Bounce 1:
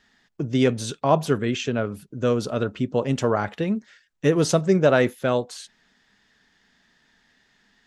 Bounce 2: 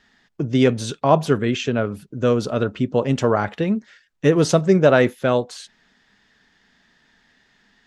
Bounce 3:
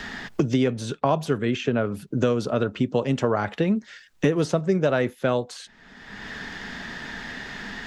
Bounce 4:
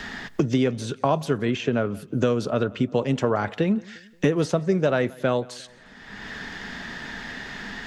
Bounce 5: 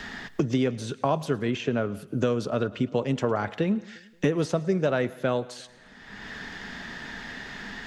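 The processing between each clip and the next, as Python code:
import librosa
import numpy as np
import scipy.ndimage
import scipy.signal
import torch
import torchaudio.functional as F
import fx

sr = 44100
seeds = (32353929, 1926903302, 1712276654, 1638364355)

y1 = fx.high_shelf(x, sr, hz=8300.0, db=-8.0)
y1 = y1 * 10.0 ** (3.5 / 20.0)
y2 = fx.band_squash(y1, sr, depth_pct=100)
y2 = y2 * 10.0 ** (-5.0 / 20.0)
y3 = fx.echo_feedback(y2, sr, ms=176, feedback_pct=45, wet_db=-23.5)
y4 = fx.echo_thinned(y3, sr, ms=109, feedback_pct=53, hz=420.0, wet_db=-22)
y4 = y4 * 10.0 ** (-3.0 / 20.0)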